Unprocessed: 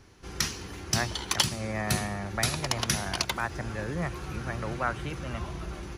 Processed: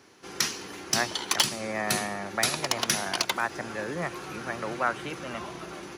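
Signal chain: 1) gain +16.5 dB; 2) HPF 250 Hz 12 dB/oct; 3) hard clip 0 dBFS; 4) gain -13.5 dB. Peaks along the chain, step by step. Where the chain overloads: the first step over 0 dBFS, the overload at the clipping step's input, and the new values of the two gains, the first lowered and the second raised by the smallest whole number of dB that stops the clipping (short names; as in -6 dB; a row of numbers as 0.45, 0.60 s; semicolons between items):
+7.5, +8.0, 0.0, -13.5 dBFS; step 1, 8.0 dB; step 1 +8.5 dB, step 4 -5.5 dB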